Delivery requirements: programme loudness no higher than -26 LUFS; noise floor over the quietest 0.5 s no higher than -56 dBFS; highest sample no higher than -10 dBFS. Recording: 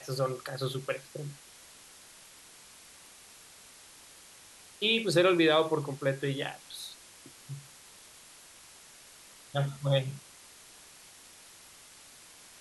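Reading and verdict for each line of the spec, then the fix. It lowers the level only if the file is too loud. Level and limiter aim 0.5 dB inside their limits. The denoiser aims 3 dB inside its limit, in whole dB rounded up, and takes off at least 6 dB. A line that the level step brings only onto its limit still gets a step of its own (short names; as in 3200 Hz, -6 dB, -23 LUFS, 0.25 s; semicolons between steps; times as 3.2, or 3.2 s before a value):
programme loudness -30.0 LUFS: OK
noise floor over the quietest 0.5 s -54 dBFS: fail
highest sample -13.0 dBFS: OK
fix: denoiser 6 dB, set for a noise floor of -54 dBFS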